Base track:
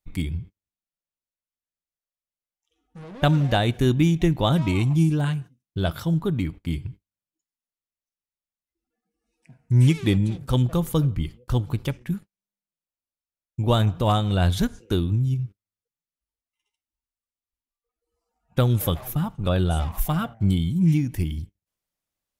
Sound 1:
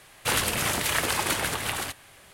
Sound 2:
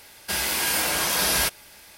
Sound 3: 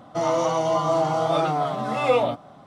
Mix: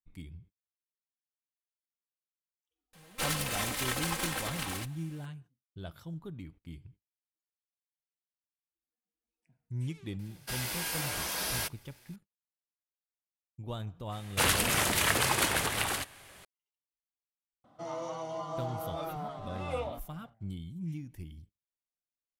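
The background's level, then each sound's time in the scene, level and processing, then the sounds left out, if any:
base track −19 dB
0:02.93: mix in 1 −6 dB + lower of the sound and its delayed copy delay 3.8 ms
0:10.19: mix in 2 −14.5 dB + leveller curve on the samples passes 1
0:14.12: mix in 1 −1.5 dB
0:17.64: mix in 3 −16 dB

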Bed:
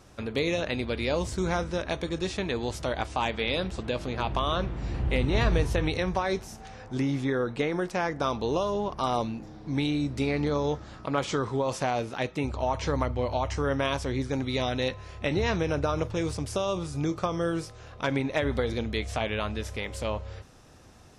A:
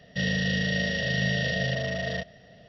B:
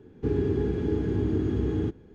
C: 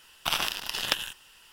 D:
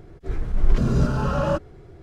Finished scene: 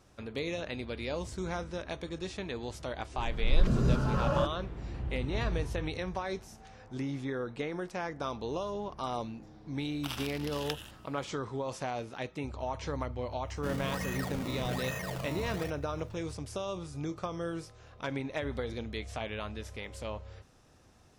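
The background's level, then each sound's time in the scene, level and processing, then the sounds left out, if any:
bed −8 dB
0:02.89: mix in D −6.5 dB + fade in at the beginning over 0.58 s
0:09.78: mix in C −12.5 dB
0:13.47: mix in A −10 dB + sample-and-hold swept by an LFO 19× 1.2 Hz
not used: B

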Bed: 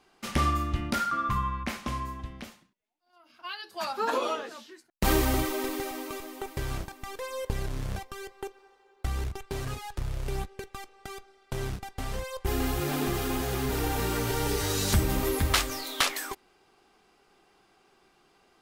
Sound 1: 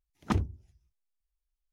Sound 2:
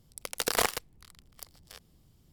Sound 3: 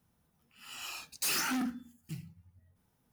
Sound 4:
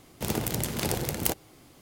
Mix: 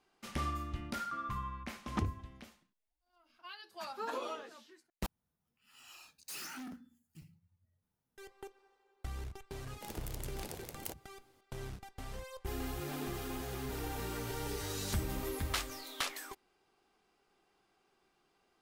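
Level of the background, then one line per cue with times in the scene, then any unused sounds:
bed −11 dB
0:01.67: mix in 1 −6.5 dB
0:05.06: overwrite with 3 −13 dB + regular buffer underruns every 0.50 s repeat
0:09.60: mix in 4 −16 dB + multiband delay without the direct sound highs, lows 60 ms, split 170 Hz
not used: 2

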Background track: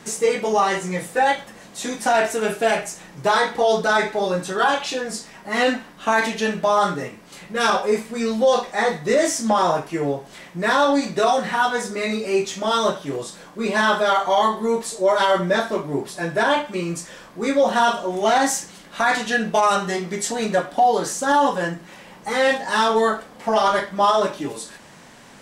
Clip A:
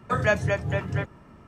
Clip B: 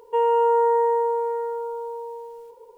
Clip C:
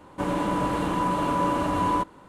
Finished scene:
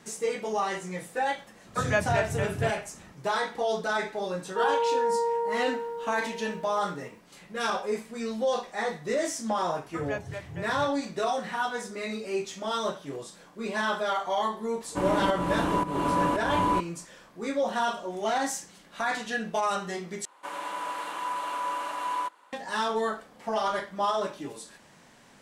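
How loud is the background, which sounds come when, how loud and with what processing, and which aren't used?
background track −10 dB
0:01.66: mix in A −3.5 dB
0:04.43: mix in B −7 dB
0:09.84: mix in A −13 dB
0:14.77: mix in C −1 dB + fake sidechain pumping 113 BPM, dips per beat 1, −16 dB, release 334 ms
0:20.25: overwrite with C −2.5 dB + high-pass filter 940 Hz

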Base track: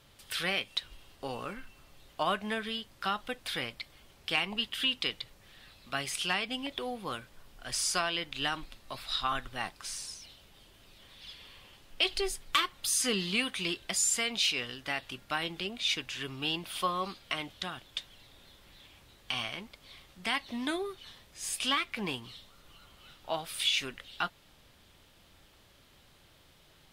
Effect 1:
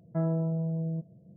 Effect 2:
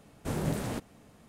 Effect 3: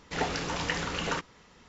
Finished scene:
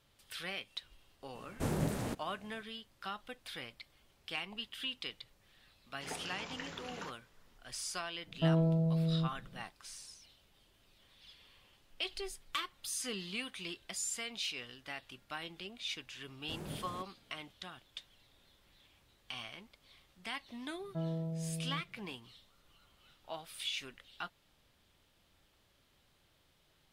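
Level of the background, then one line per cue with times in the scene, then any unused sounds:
base track −10 dB
0:01.35: mix in 2 −1.5 dB + speech leveller
0:05.90: mix in 3 −14.5 dB + high-pass filter 86 Hz
0:08.27: mix in 1 −0.5 dB
0:16.23: mix in 2 −13.5 dB
0:20.80: mix in 1 −9 dB

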